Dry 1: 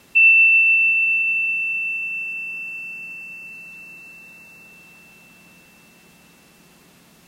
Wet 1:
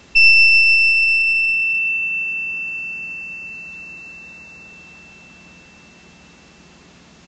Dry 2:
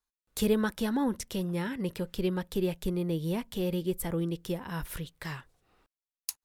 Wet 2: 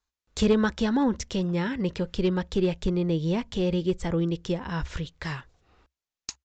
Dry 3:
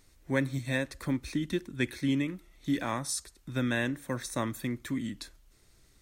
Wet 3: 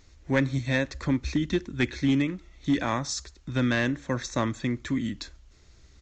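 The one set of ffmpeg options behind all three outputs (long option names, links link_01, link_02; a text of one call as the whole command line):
ffmpeg -i in.wav -af "equalizer=frequency=66:width_type=o:width=0.47:gain=12.5,aeval=exprs='clip(val(0),-1,0.0841)':channel_layout=same,aresample=16000,aresample=44100,volume=5dB" out.wav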